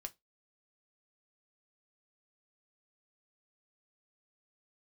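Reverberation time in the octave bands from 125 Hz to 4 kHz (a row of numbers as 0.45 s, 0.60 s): 0.20 s, 0.20 s, 0.20 s, 0.15 s, 0.15 s, 0.15 s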